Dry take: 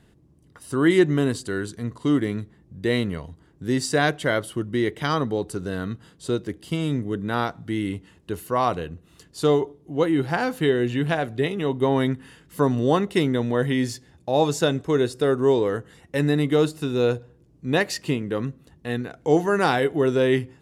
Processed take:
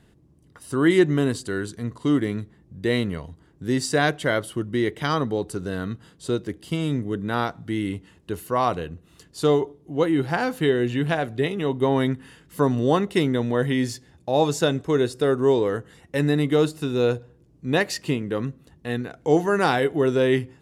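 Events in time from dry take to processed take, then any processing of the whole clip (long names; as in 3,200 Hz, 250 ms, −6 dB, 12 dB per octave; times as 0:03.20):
nothing changes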